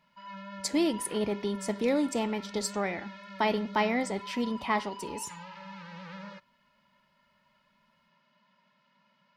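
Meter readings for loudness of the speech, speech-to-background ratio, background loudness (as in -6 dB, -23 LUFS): -31.0 LUFS, 13.0 dB, -44.0 LUFS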